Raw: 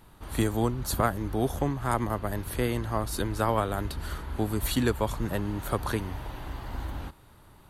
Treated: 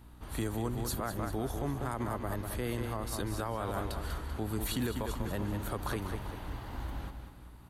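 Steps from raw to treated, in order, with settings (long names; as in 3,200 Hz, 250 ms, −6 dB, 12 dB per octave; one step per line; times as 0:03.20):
repeating echo 194 ms, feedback 45%, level −8.5 dB
brickwall limiter −19.5 dBFS, peak gain reduction 9 dB
mains hum 60 Hz, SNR 18 dB
level −4.5 dB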